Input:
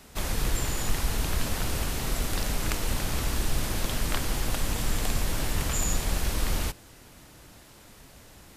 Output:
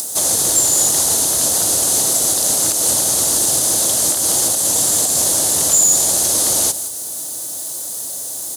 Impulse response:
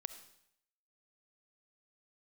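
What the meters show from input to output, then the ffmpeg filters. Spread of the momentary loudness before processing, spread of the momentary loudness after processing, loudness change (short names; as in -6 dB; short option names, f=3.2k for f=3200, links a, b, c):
2 LU, 12 LU, +16.5 dB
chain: -filter_complex "[0:a]superequalizer=6b=1.58:15b=2:16b=2.82,asplit=2[a][b];[b]asoftclip=type=hard:threshold=-22.5dB,volume=-10dB[c];[a][c]amix=inputs=2:normalize=0,highpass=f=89:w=0.5412,highpass=f=89:w=1.3066,equalizer=f=620:t=o:w=1.6:g=14,asplit=2[d][e];[e]aecho=0:1:172:0.158[f];[d][f]amix=inputs=2:normalize=0,acrusher=bits=7:mix=0:aa=0.5,acompressor=mode=upward:threshold=-36dB:ratio=2.5,alimiter=limit=-14.5dB:level=0:latency=1:release=169,acrossover=split=8000[g][h];[h]acompressor=threshold=-39dB:ratio=4:attack=1:release=60[i];[g][i]amix=inputs=2:normalize=0,aexciter=amount=4.1:drive=10:freq=3.6k,volume=-1.5dB"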